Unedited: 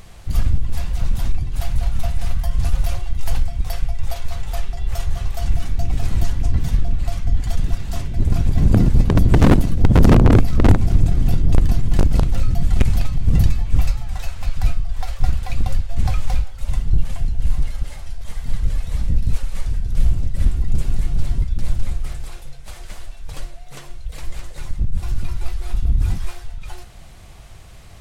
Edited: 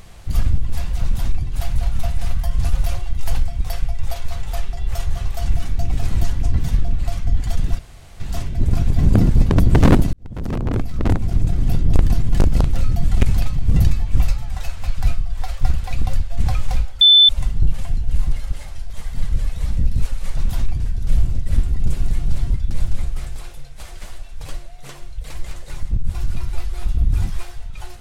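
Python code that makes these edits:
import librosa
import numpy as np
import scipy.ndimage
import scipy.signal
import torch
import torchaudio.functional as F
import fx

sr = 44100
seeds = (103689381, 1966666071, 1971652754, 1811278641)

y = fx.edit(x, sr, fx.duplicate(start_s=1.03, length_s=0.43, to_s=19.68),
    fx.insert_room_tone(at_s=7.79, length_s=0.41),
    fx.fade_in_span(start_s=9.72, length_s=1.8),
    fx.insert_tone(at_s=16.6, length_s=0.28, hz=3520.0, db=-6.0), tone=tone)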